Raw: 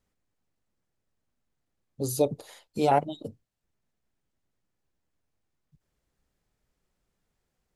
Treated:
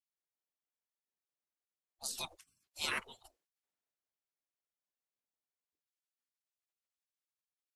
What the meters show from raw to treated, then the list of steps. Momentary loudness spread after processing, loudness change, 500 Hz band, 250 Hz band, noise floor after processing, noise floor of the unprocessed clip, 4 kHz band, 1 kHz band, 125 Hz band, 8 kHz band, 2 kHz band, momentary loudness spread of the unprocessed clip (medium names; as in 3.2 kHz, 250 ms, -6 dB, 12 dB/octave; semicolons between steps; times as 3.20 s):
20 LU, -12.5 dB, -27.0 dB, -25.5 dB, under -85 dBFS, -81 dBFS, +2.0 dB, -20.0 dB, -26.5 dB, -5.0 dB, +2.0 dB, 18 LU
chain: spectral gate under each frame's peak -25 dB weak; three bands expanded up and down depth 40%; trim +1 dB